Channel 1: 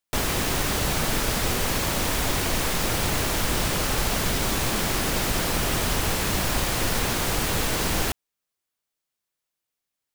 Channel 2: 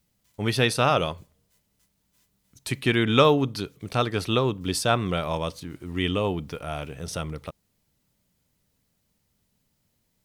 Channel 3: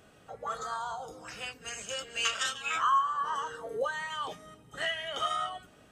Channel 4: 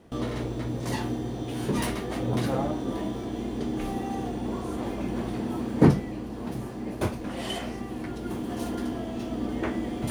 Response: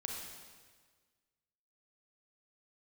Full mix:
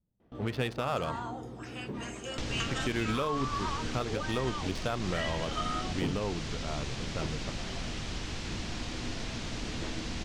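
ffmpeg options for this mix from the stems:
-filter_complex "[0:a]lowpass=f=6700:w=0.5412,lowpass=f=6700:w=1.3066,acrossover=split=210|2300[s0][s1][s2];[s0]acompressor=threshold=0.0126:ratio=4[s3];[s1]acompressor=threshold=0.00316:ratio=4[s4];[s2]acompressor=threshold=0.01:ratio=4[s5];[s3][s4][s5]amix=inputs=3:normalize=0,adelay=2250,volume=1.06[s6];[1:a]adynamicsmooth=sensitivity=4.5:basefreq=680,volume=0.501[s7];[2:a]adelay=350,volume=0.75[s8];[3:a]lowpass=4100,adelay=200,volume=0.251[s9];[s6][s7][s8][s9]amix=inputs=4:normalize=0,highshelf=f=4100:g=-7,alimiter=limit=0.0891:level=0:latency=1:release=165"

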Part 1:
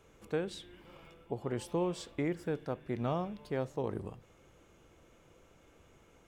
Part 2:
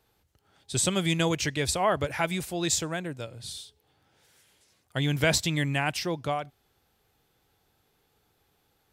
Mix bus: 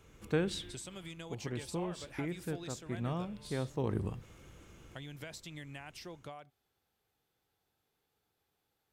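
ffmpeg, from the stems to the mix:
-filter_complex "[0:a]equalizer=f=620:t=o:w=1.5:g=-6.5,dynaudnorm=f=110:g=5:m=1.58,volume=1.33[s0];[1:a]lowshelf=f=140:g=-8.5,acompressor=threshold=0.0251:ratio=10,volume=0.266,asplit=2[s1][s2];[s2]apad=whole_len=276812[s3];[s0][s3]sidechaincompress=threshold=0.00251:ratio=6:attack=28:release=1110[s4];[s4][s1]amix=inputs=2:normalize=0,equalizer=f=70:t=o:w=2.5:g=3.5"

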